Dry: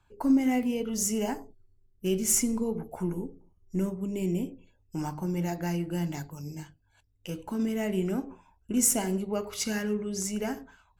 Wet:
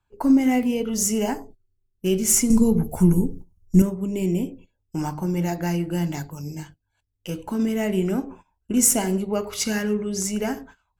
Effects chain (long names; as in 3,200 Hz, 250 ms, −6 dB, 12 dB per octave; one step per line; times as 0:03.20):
noise gate −50 dBFS, range −14 dB
0:02.50–0:03.82: bass and treble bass +13 dB, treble +13 dB
level +6 dB